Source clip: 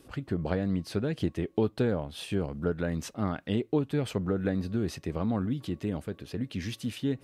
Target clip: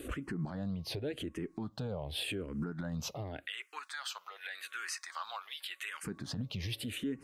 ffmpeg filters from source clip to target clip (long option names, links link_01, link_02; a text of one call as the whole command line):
ffmpeg -i in.wav -filter_complex "[0:a]asplit=3[link_01][link_02][link_03];[link_01]afade=type=out:start_time=3.45:duration=0.02[link_04];[link_02]highpass=frequency=1300:width=0.5412,highpass=frequency=1300:width=1.3066,afade=type=in:start_time=3.45:duration=0.02,afade=type=out:start_time=6.03:duration=0.02[link_05];[link_03]afade=type=in:start_time=6.03:duration=0.02[link_06];[link_04][link_05][link_06]amix=inputs=3:normalize=0,acompressor=threshold=-44dB:ratio=2.5,alimiter=level_in=14.5dB:limit=-24dB:level=0:latency=1:release=80,volume=-14.5dB,asplit=2[link_07][link_08];[link_08]afreqshift=-0.87[link_09];[link_07][link_09]amix=inputs=2:normalize=1,volume=12.5dB" out.wav